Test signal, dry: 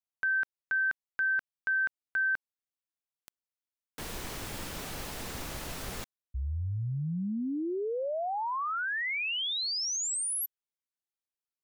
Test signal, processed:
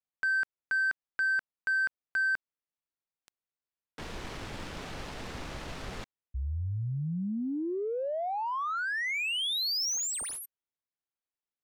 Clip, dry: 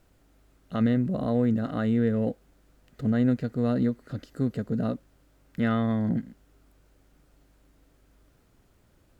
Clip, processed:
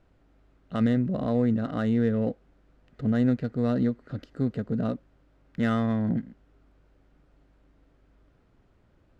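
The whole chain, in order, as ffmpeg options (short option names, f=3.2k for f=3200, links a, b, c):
-af "highshelf=f=3.6k:g=4,adynamicsmooth=sensitivity=7:basefreq=2.9k"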